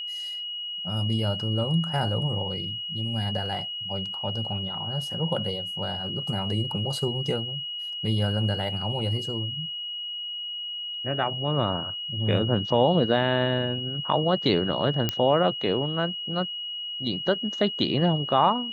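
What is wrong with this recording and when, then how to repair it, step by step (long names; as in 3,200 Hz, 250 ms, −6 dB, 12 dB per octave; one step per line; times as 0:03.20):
whistle 2,900 Hz −31 dBFS
0:15.09: click −9 dBFS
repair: click removal
notch filter 2,900 Hz, Q 30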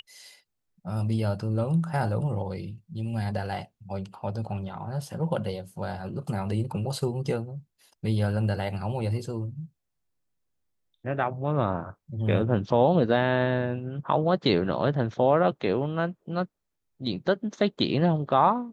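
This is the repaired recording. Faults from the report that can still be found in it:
none of them is left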